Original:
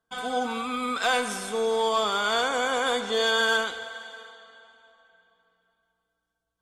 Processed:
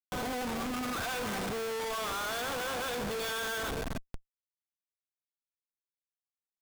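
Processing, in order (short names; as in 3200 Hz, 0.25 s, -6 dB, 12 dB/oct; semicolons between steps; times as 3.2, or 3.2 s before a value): 1.41–2.04 HPF 160 Hz 12 dB/oct; Schmitt trigger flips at -32 dBFS; gain -6 dB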